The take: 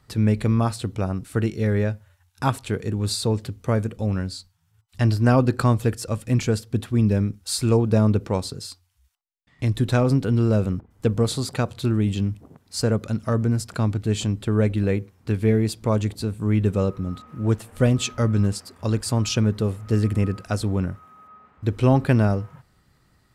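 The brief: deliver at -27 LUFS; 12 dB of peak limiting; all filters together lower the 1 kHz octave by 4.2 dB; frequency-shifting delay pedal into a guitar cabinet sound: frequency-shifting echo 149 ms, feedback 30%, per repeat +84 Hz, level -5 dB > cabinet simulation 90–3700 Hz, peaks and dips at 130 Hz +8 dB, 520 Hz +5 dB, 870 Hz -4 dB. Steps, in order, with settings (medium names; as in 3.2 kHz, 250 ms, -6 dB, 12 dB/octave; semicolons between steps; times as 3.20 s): peaking EQ 1 kHz -4 dB; peak limiter -17.5 dBFS; frequency-shifting echo 149 ms, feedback 30%, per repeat +84 Hz, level -5 dB; cabinet simulation 90–3700 Hz, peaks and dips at 130 Hz +8 dB, 520 Hz +5 dB, 870 Hz -4 dB; trim -1.5 dB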